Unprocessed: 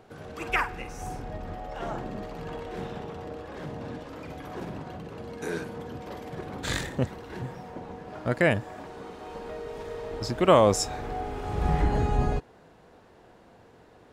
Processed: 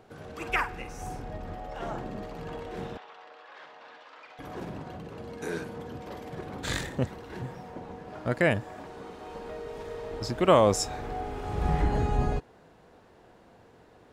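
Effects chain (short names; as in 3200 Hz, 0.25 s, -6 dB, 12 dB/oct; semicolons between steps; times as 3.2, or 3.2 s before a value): 2.97–4.39 Butterworth band-pass 2100 Hz, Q 0.55; gain -1.5 dB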